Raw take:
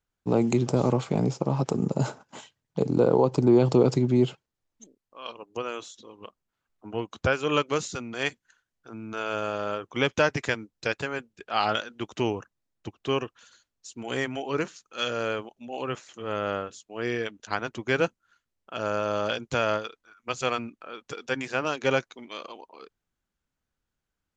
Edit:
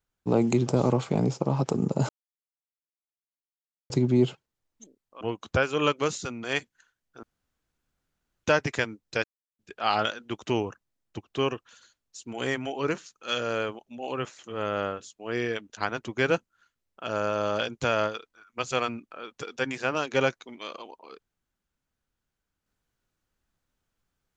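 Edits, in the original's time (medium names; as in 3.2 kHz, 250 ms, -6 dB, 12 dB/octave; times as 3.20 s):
2.09–3.90 s: mute
5.21–6.91 s: delete
8.93–10.14 s: room tone
10.94–11.29 s: mute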